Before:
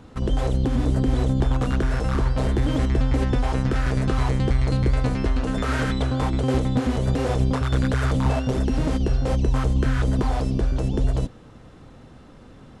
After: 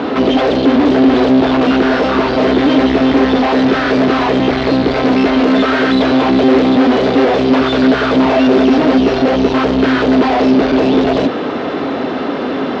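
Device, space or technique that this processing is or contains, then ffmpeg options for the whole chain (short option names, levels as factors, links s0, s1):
overdrive pedal into a guitar cabinet: -filter_complex "[0:a]asplit=2[s0][s1];[s1]highpass=f=720:p=1,volume=100,asoftclip=type=tanh:threshold=0.335[s2];[s0][s2]amix=inputs=2:normalize=0,lowpass=f=3900:p=1,volume=0.501,highpass=97,equalizer=f=120:t=q:w=4:g=-9,equalizer=f=270:t=q:w=4:g=10,equalizer=f=400:t=q:w=4:g=9,equalizer=f=660:t=q:w=4:g=6,lowpass=f=4600:w=0.5412,lowpass=f=4600:w=1.3066"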